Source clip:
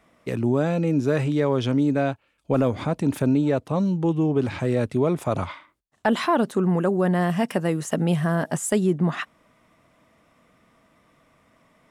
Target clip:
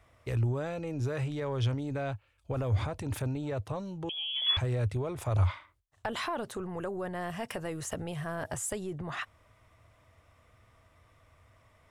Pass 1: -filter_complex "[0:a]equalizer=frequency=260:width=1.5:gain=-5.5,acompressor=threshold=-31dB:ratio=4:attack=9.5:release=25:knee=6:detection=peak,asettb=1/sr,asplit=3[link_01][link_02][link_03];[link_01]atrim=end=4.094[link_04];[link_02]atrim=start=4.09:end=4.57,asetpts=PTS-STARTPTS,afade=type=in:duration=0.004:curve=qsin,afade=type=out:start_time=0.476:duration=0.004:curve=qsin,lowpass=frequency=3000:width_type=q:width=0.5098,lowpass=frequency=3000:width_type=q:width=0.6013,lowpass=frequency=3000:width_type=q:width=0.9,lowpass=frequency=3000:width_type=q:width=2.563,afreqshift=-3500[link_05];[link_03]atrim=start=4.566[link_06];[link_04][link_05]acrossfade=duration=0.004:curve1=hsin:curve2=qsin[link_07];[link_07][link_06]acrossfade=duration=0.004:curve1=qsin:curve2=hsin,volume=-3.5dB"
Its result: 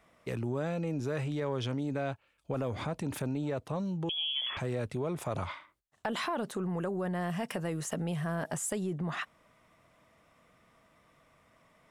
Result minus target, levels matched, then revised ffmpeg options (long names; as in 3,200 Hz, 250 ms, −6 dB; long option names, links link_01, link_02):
125 Hz band −3.5 dB
-filter_complex "[0:a]equalizer=frequency=260:width=1.5:gain=-5.5,acompressor=threshold=-31dB:ratio=4:attack=9.5:release=25:knee=6:detection=peak,lowshelf=frequency=130:width_type=q:width=3:gain=9,asettb=1/sr,asplit=3[link_01][link_02][link_03];[link_01]atrim=end=4.094[link_04];[link_02]atrim=start=4.09:end=4.57,asetpts=PTS-STARTPTS,afade=type=in:duration=0.004:curve=qsin,afade=type=out:start_time=0.476:duration=0.004:curve=qsin,lowpass=frequency=3000:width_type=q:width=0.5098,lowpass=frequency=3000:width_type=q:width=0.6013,lowpass=frequency=3000:width_type=q:width=0.9,lowpass=frequency=3000:width_type=q:width=2.563,afreqshift=-3500[link_05];[link_03]atrim=start=4.566[link_06];[link_04][link_05]acrossfade=duration=0.004:curve1=hsin:curve2=qsin[link_07];[link_07][link_06]acrossfade=duration=0.004:curve1=qsin:curve2=hsin,volume=-3.5dB"